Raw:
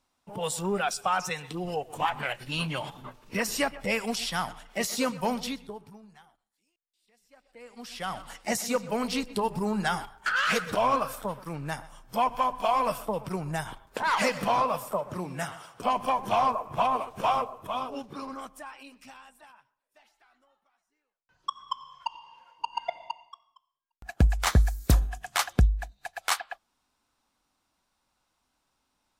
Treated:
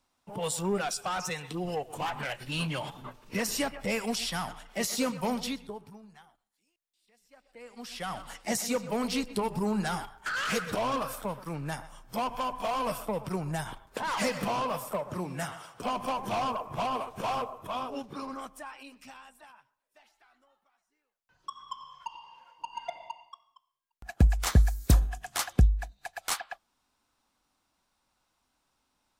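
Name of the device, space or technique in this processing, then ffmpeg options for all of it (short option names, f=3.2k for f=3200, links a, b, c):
one-band saturation: -filter_complex "[0:a]acrossover=split=450|4800[a][b][c];[b]asoftclip=type=tanh:threshold=-29.5dB[d];[a][d][c]amix=inputs=3:normalize=0"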